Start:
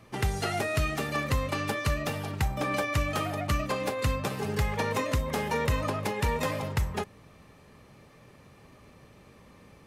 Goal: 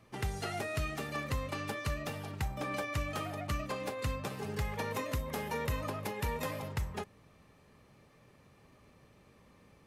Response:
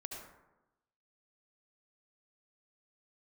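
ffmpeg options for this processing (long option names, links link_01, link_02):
-filter_complex "[0:a]asettb=1/sr,asplit=3[link_01][link_02][link_03];[link_01]atrim=end=4.654[link_04];[link_02]atrim=start=4.65:end=6.69,asetpts=PTS-STARTPTS,afade=type=in:duration=0.004:curve=qsin,afade=type=out:start_time=2.036:duration=0.004:curve=qsin,equalizer=frequency=12000:width_type=o:width=0.31:gain=8[link_05];[link_03]atrim=start=6.686[link_06];[link_04][link_05]acrossfade=duration=0.004:curve1=hsin:curve2=qsin[link_07];[link_07][link_06]acrossfade=duration=0.004:curve1=qsin:curve2=hsin,volume=-7.5dB"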